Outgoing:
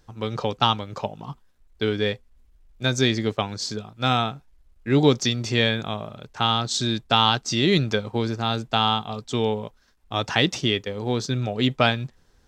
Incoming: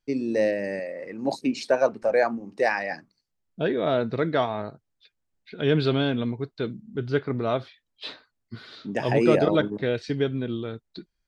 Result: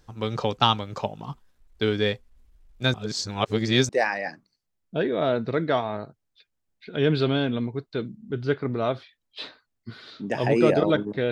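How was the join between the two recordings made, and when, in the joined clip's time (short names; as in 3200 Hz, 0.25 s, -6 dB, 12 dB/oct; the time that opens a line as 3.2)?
outgoing
2.94–3.89 reverse
3.89 switch to incoming from 2.54 s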